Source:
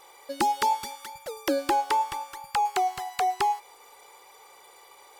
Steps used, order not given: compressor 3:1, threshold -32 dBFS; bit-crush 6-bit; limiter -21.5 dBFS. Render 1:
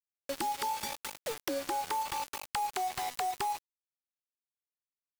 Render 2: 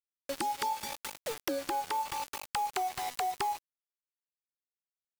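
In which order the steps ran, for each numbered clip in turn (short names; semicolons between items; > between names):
limiter > bit-crush > compressor; bit-crush > compressor > limiter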